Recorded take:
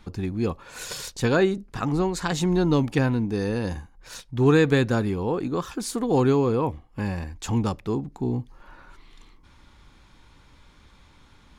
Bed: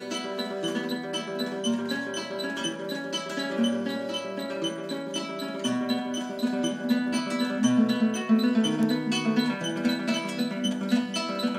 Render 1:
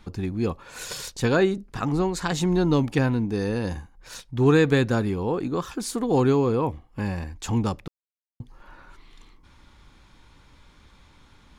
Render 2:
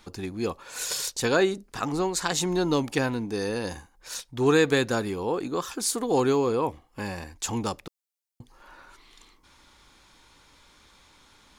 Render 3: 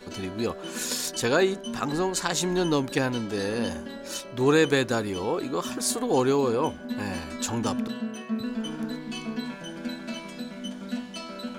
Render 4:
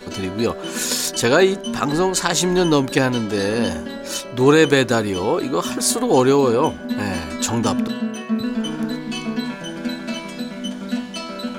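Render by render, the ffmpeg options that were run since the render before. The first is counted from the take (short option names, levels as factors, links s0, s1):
-filter_complex "[0:a]asplit=3[s0][s1][s2];[s0]atrim=end=7.88,asetpts=PTS-STARTPTS,afade=t=out:st=7.876:d=0.004:c=hsin[s3];[s1]atrim=start=7.88:end=8.4,asetpts=PTS-STARTPTS,volume=0[s4];[s2]atrim=start=8.4,asetpts=PTS-STARTPTS,afade=t=in:d=0.004:c=hsin[s5];[s3][s4][s5]concat=n=3:v=0:a=1"
-af "bass=f=250:g=-10,treble=f=4000:g=7"
-filter_complex "[1:a]volume=0.398[s0];[0:a][s0]amix=inputs=2:normalize=0"
-af "volume=2.51,alimiter=limit=0.708:level=0:latency=1"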